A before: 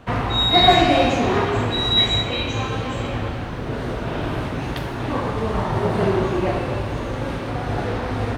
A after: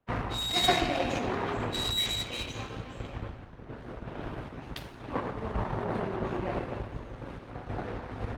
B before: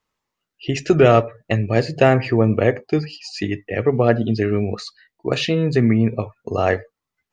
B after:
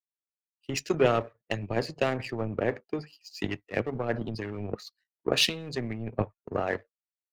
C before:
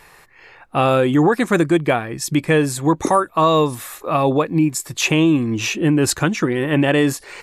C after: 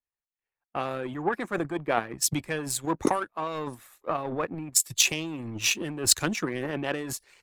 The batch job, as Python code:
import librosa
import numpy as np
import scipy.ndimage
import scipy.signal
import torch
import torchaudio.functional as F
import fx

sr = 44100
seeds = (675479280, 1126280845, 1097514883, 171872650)

p1 = fx.over_compress(x, sr, threshold_db=-21.0, ratio=-0.5)
p2 = x + (p1 * 10.0 ** (-1.0 / 20.0))
p3 = fx.power_curve(p2, sr, exponent=1.4)
p4 = fx.hpss(p3, sr, part='harmonic', gain_db=-7)
p5 = fx.band_widen(p4, sr, depth_pct=100)
y = p5 * 10.0 ** (-8.5 / 20.0)